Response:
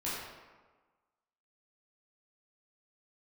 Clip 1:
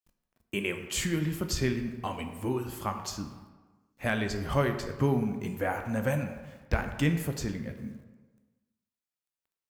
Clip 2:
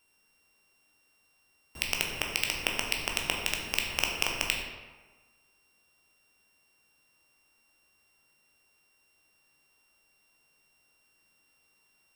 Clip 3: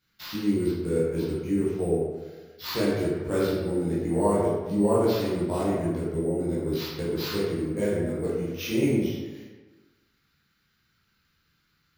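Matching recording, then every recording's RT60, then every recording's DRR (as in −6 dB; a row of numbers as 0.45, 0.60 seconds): 3; 1.3, 1.3, 1.4 seconds; 6.0, 0.0, −9.5 decibels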